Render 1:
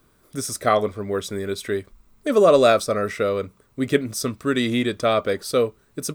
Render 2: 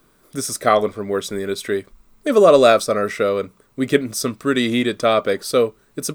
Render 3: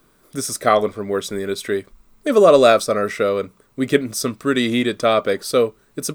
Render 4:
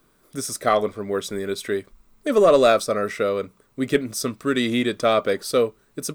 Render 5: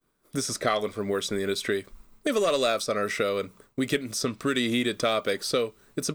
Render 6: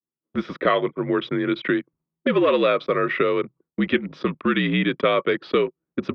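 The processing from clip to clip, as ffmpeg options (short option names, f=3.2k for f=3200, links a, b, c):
-af "equalizer=f=75:w=1.9:g=-15,volume=3.5dB"
-af anull
-filter_complex "[0:a]dynaudnorm=f=310:g=7:m=11.5dB,asplit=2[a][b];[b]aeval=exprs='clip(val(0),-1,0.355)':c=same,volume=-6dB[c];[a][c]amix=inputs=2:normalize=0,volume=-7.5dB"
-filter_complex "[0:a]agate=range=-33dB:threshold=-50dB:ratio=3:detection=peak,acrossover=split=2100|6900[a][b][c];[a]acompressor=threshold=-30dB:ratio=4[d];[b]acompressor=threshold=-34dB:ratio=4[e];[c]acompressor=threshold=-48dB:ratio=4[f];[d][e][f]amix=inputs=3:normalize=0,volume=4.5dB"
-af "anlmdn=1.58,highpass=f=220:t=q:w=0.5412,highpass=f=220:t=q:w=1.307,lowpass=f=3.2k:t=q:w=0.5176,lowpass=f=3.2k:t=q:w=0.7071,lowpass=f=3.2k:t=q:w=1.932,afreqshift=-59,volume=6dB"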